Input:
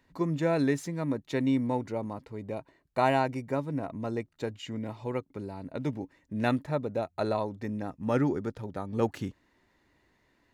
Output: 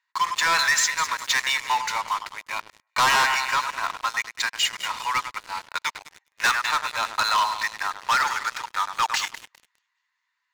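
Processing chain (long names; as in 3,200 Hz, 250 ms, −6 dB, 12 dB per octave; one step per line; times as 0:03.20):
Chebyshev band-pass filter 1,000–7,400 Hz, order 4
on a send: echo with a time of its own for lows and highs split 2,300 Hz, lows 101 ms, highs 203 ms, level −12 dB
on the sum: leveller curve on the samples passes 5
dynamic equaliser 5,600 Hz, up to +4 dB, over −42 dBFS, Q 0.97
level +4.5 dB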